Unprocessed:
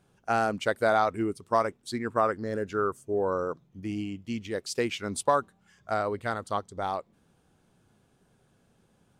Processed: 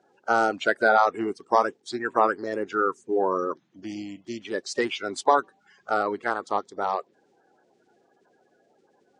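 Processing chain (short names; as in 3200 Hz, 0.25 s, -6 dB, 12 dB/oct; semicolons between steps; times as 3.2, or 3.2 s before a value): bin magnitudes rounded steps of 30 dB; speaker cabinet 310–7100 Hz, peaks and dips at 380 Hz +4 dB, 780 Hz +4 dB, 1700 Hz +4 dB; gain +3.5 dB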